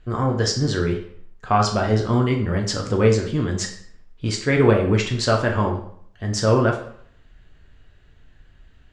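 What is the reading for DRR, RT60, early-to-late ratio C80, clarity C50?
0.5 dB, 0.60 s, 11.5 dB, 7.5 dB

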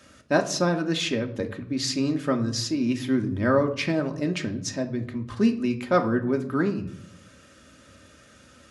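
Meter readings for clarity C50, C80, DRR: 13.0 dB, 17.0 dB, 3.5 dB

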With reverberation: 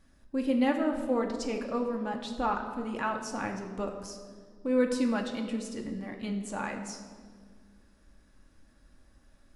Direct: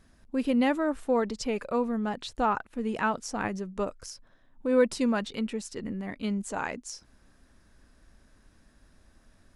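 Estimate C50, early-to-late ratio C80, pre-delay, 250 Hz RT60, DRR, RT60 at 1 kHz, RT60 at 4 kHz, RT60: 7.5 dB, 9.0 dB, 3 ms, 2.6 s, 2.5 dB, 1.5 s, 1.3 s, 1.8 s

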